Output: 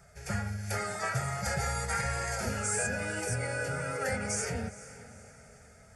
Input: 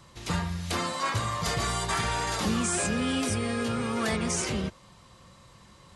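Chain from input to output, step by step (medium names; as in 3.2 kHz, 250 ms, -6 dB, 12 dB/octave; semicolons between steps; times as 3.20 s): static phaser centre 910 Hz, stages 6; formant-preserving pitch shift +3 st; echo that smears into a reverb 464 ms, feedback 46%, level -16 dB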